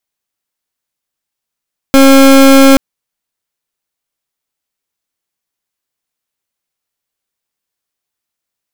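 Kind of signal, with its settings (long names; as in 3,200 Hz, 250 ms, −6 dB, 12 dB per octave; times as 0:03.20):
pulse wave 271 Hz, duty 29% −3.5 dBFS 0.83 s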